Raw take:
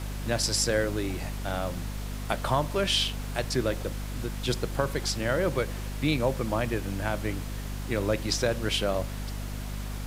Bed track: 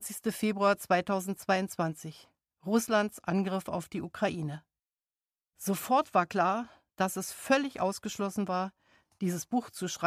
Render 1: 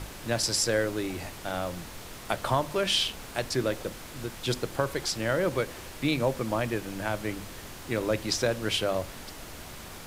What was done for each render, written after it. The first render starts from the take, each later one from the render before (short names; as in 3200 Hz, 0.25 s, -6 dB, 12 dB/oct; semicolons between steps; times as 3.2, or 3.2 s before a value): notches 50/100/150/200/250 Hz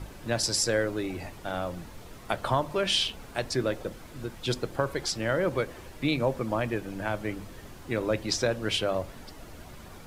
denoiser 9 dB, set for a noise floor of -43 dBFS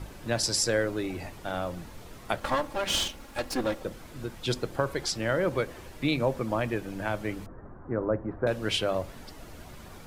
2.4–3.82 minimum comb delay 3.6 ms; 7.46–8.47 steep low-pass 1500 Hz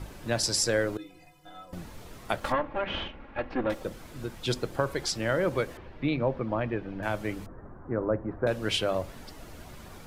0.97–1.73 metallic resonator 150 Hz, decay 0.41 s, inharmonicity 0.03; 2.52–3.7 LPF 2600 Hz 24 dB/oct; 5.77–7.03 air absorption 320 m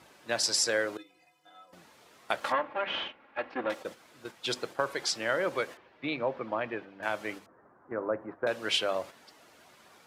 weighting filter A; gate -41 dBFS, range -7 dB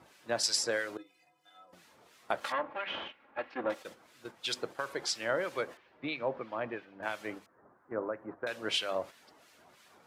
harmonic tremolo 3 Hz, depth 70%, crossover 1500 Hz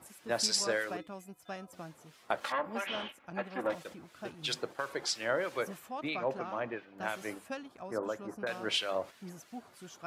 add bed track -15 dB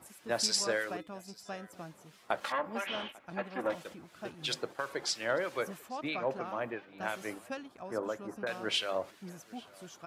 echo 0.845 s -23.5 dB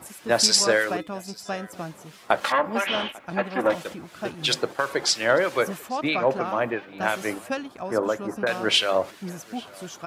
gain +11.5 dB